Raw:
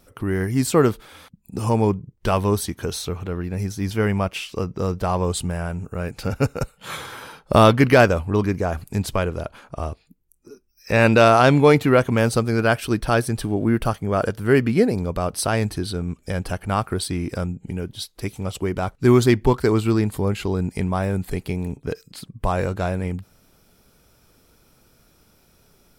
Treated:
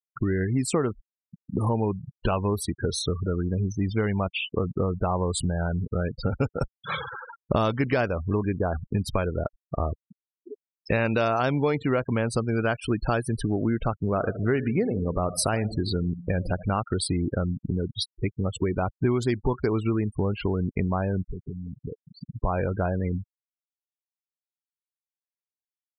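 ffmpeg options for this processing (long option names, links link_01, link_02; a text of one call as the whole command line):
ffmpeg -i in.wav -filter_complex "[0:a]asettb=1/sr,asplit=3[link_01][link_02][link_03];[link_01]atrim=end=13.934[link_04];[link_02]atrim=start=13.93:end=16.79,asetpts=PTS-STARTPTS,afade=type=in:duration=0.004:curve=qsin,afade=type=out:start_time=2.856:duration=0.004:curve=qsin,aecho=1:1:75|150|225|300|375:0.178|0.096|0.0519|0.028|0.0151,atrim=end_sample=126126[link_05];[link_03]atrim=start=16.786[link_06];[link_04][link_05]acrossfade=duration=0.004:curve1=hsin:curve2=qsin[link_07];[link_07][link_06]acrossfade=duration=0.004:curve1=qsin:curve2=hsin,asettb=1/sr,asplit=3[link_08][link_09][link_10];[link_08]atrim=end=21.314[link_11];[link_09]atrim=start=21.31:end=22.35,asetpts=PTS-STARTPTS,afade=type=in:duration=0.004:curve=qsin,afade=type=out:start_time=1.036:duration=0.004:curve=qsin,acompressor=threshold=-33dB:ratio=10:attack=3.2:release=140:knee=1:detection=peak[link_12];[link_10]atrim=start=22.346[link_13];[link_11][link_12]acrossfade=duration=0.004:curve1=hsin:curve2=qsin[link_14];[link_14][link_13]acrossfade=duration=0.004:curve1=qsin:curve2=hsin,afftfilt=real='re*gte(hypot(re,im),0.0447)':imag='im*gte(hypot(re,im),0.0447)':win_size=1024:overlap=0.75,acompressor=threshold=-26dB:ratio=5,volume=4dB" out.wav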